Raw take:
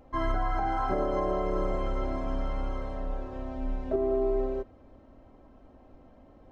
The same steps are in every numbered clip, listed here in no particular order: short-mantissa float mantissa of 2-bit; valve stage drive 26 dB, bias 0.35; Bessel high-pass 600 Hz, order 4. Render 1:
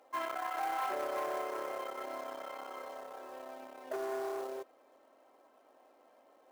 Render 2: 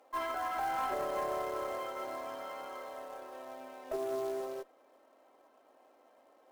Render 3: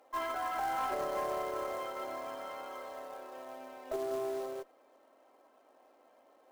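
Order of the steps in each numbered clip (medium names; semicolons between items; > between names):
valve stage > Bessel high-pass > short-mantissa float; Bessel high-pass > short-mantissa float > valve stage; Bessel high-pass > valve stage > short-mantissa float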